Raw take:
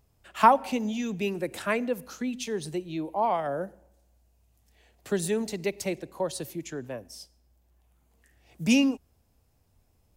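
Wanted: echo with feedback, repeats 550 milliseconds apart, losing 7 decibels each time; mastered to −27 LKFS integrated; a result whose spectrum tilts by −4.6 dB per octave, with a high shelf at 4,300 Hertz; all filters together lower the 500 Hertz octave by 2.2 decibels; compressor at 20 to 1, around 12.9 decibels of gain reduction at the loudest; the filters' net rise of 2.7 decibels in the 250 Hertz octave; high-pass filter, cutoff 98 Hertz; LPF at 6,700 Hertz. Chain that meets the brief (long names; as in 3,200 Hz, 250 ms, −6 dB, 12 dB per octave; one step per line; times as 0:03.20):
high-pass filter 98 Hz
low-pass filter 6,700 Hz
parametric band 250 Hz +4 dB
parametric band 500 Hz −4 dB
high-shelf EQ 4,300 Hz +6 dB
downward compressor 20 to 1, threshold −26 dBFS
repeating echo 550 ms, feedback 45%, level −7 dB
level +6 dB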